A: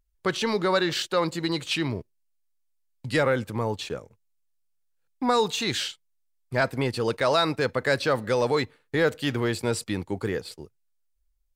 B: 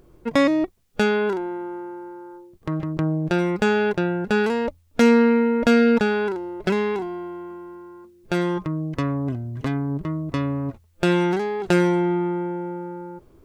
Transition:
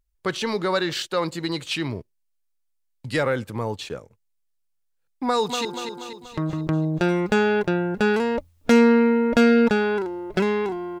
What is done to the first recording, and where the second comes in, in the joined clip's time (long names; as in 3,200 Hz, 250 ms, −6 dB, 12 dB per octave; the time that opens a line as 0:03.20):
A
0:05.25–0:05.65: delay throw 240 ms, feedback 55%, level −7 dB
0:05.65: continue with B from 0:01.95